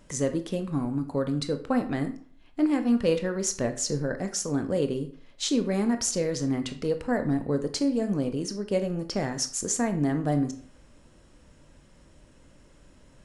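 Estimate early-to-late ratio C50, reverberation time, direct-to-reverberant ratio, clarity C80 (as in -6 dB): 12.5 dB, 0.50 s, 7.5 dB, 16.0 dB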